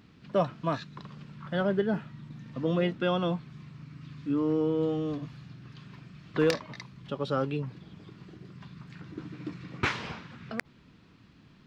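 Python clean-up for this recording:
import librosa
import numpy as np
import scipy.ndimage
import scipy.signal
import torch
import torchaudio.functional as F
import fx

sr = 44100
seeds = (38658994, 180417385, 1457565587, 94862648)

y = fx.fix_declip(x, sr, threshold_db=-16.0)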